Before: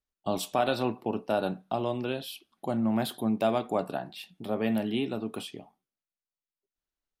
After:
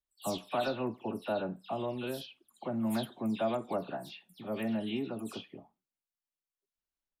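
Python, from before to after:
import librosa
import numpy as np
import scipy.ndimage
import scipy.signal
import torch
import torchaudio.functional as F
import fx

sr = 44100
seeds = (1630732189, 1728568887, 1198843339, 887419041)

y = fx.spec_delay(x, sr, highs='early', ms=152)
y = F.gain(torch.from_numpy(y), -5.0).numpy()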